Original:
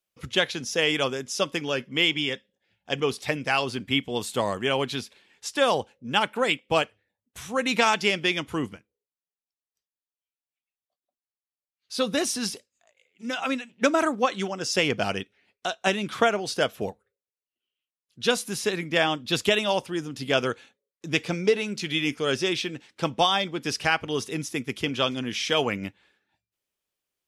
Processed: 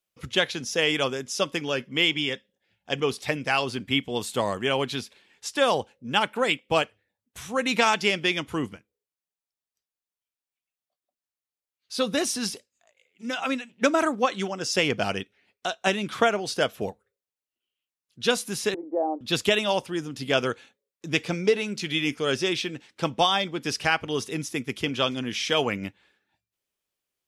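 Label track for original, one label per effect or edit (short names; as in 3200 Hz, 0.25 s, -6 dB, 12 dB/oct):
18.740000	19.210000	elliptic band-pass 300–830 Hz, stop band 60 dB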